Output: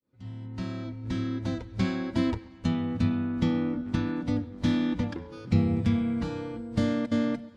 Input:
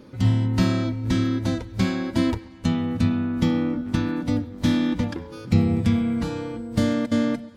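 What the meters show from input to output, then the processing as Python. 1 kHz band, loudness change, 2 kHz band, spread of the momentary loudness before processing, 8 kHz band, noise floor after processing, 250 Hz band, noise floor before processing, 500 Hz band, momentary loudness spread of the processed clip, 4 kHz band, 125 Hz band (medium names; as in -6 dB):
-5.5 dB, -5.5 dB, -6.0 dB, 6 LU, no reading, -48 dBFS, -5.0 dB, -42 dBFS, -5.0 dB, 9 LU, -7.0 dB, -6.5 dB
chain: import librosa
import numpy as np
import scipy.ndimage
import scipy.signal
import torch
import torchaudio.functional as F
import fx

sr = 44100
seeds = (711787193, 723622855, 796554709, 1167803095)

y = fx.fade_in_head(x, sr, length_s=1.87)
y = fx.air_absorb(y, sr, metres=64.0)
y = y * 10.0 ** (-4.5 / 20.0)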